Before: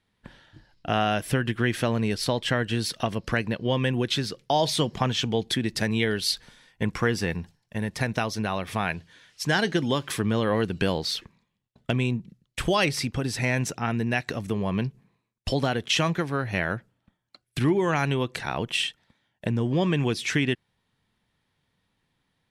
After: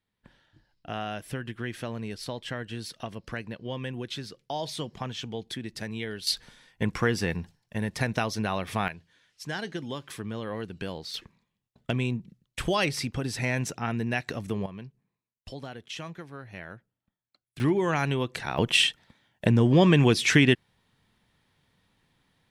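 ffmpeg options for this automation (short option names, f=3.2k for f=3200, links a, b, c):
-af "asetnsamples=n=441:p=0,asendcmd='6.27 volume volume -1dB;8.88 volume volume -10.5dB;11.14 volume volume -3dB;14.66 volume volume -15dB;17.6 volume volume -2dB;18.58 volume volume 5dB',volume=-10dB"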